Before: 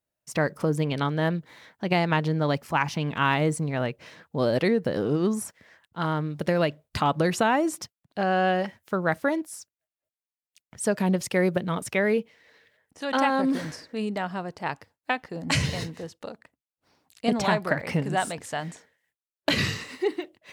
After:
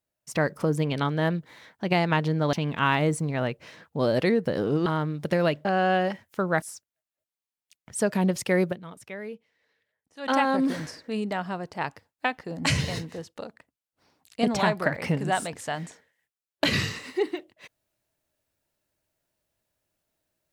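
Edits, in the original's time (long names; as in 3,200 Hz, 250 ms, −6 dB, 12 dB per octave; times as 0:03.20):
0:02.53–0:02.92: remove
0:05.25–0:06.02: remove
0:06.81–0:08.19: remove
0:09.16–0:09.47: remove
0:11.49–0:13.17: duck −14 dB, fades 0.15 s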